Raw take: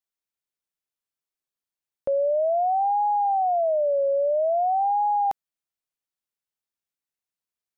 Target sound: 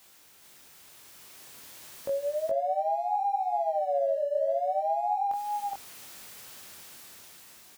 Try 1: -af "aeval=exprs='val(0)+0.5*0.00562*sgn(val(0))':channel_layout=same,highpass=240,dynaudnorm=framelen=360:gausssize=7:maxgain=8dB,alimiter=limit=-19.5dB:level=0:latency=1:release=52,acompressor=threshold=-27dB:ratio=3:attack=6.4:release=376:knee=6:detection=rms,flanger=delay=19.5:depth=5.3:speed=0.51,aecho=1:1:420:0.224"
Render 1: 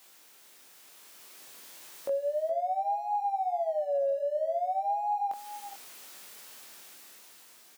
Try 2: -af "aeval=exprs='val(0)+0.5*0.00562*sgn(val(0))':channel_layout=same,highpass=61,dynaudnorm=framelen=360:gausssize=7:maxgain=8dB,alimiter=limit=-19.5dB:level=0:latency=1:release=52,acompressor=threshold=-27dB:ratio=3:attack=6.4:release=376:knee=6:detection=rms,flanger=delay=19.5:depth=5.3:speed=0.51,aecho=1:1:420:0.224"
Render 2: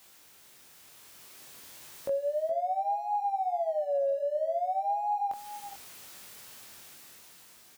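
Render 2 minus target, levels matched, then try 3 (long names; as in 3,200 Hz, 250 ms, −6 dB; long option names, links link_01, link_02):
echo-to-direct −11 dB
-af "aeval=exprs='val(0)+0.5*0.00562*sgn(val(0))':channel_layout=same,highpass=61,dynaudnorm=framelen=360:gausssize=7:maxgain=8dB,alimiter=limit=-19.5dB:level=0:latency=1:release=52,acompressor=threshold=-27dB:ratio=3:attack=6.4:release=376:knee=6:detection=rms,flanger=delay=19.5:depth=5.3:speed=0.51,aecho=1:1:420:0.794"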